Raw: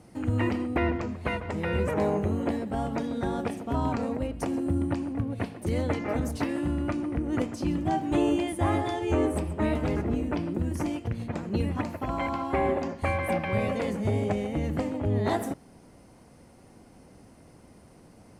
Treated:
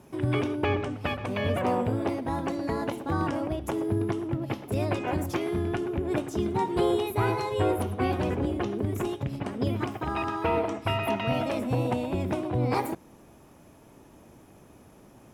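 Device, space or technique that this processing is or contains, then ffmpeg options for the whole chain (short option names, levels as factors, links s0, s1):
nightcore: -af "asetrate=52920,aresample=44100"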